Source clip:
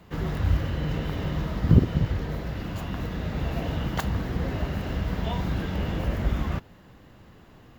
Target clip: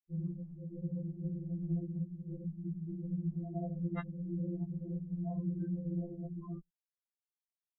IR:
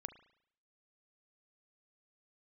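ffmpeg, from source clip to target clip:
-filter_complex "[0:a]anlmdn=6.31,flanger=delay=0.1:depth=1.9:regen=-88:speed=0.63:shape=triangular,equalizer=f=640:t=o:w=1.2:g=-3,asplit=2[a][b];[b]aecho=0:1:78|156|234:0.141|0.0537|0.0204[c];[a][c]amix=inputs=2:normalize=0,acrusher=bits=10:mix=0:aa=0.000001,asoftclip=type=tanh:threshold=-14.5dB,equalizer=f=130:t=o:w=0.23:g=-4,acrossover=split=480|3000[d][e][f];[e]acompressor=threshold=-32dB:ratio=6[g];[d][g][f]amix=inputs=3:normalize=0,afftfilt=real='re*gte(hypot(re,im),0.0355)':imag='im*gte(hypot(re,im),0.0355)':win_size=1024:overlap=0.75,acompressor=threshold=-33dB:ratio=16,afftfilt=real='re*2.83*eq(mod(b,8),0)':imag='im*2.83*eq(mod(b,8),0)':win_size=2048:overlap=0.75,volume=4dB"

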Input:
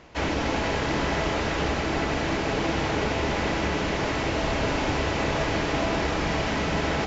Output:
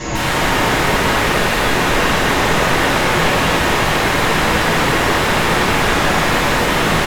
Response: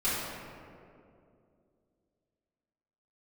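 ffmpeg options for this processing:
-filter_complex "[0:a]asettb=1/sr,asplit=3[a][b][c];[a]atrim=end=0.724[d];[b]atrim=start=0.72:end=2.88,asetpts=PTS-STARTPTS,afade=t=in:d=0.004:c=qsin,afade=t=out:st=2.156:d=0.004:c=qsin,highpass=71[e];[c]atrim=start=2.876[f];[d][e]acrossfade=d=0.004:c1=hsin:c2=qsin[g];[g][f]acrossfade=d=0.004:c1=qsin:c2=hsin,aecho=1:1:15|49|77:0.473|0.316|0.531,acompressor=threshold=-28dB:ratio=5,lowpass=f=6.8k:t=q:w=10,equalizer=f=110:t=o:w=0.54:g=10,aeval=exprs='0.141*sin(PI/2*7.08*val(0)/0.141)':c=same[h];[1:a]atrim=start_sample=2205,asetrate=33957,aresample=44100[i];[h][i]afir=irnorm=-1:irlink=0,acrossover=split=3300[j][k];[k]acompressor=threshold=-26dB:ratio=4:attack=1:release=60[l];[j][l]amix=inputs=2:normalize=0,volume=-3.5dB"

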